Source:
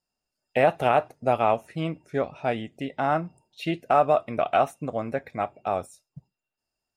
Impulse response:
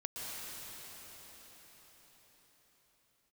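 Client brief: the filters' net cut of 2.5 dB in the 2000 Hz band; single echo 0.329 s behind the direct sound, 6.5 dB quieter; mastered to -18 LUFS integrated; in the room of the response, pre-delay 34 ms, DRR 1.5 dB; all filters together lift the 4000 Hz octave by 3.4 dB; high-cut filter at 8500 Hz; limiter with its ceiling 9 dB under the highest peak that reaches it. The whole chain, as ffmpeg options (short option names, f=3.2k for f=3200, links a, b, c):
-filter_complex "[0:a]lowpass=8.5k,equalizer=f=2k:t=o:g=-6,equalizer=f=4k:t=o:g=8,alimiter=limit=-17dB:level=0:latency=1,aecho=1:1:329:0.473,asplit=2[a][b];[1:a]atrim=start_sample=2205,adelay=34[c];[b][c]afir=irnorm=-1:irlink=0,volume=-3.5dB[d];[a][d]amix=inputs=2:normalize=0,volume=10dB"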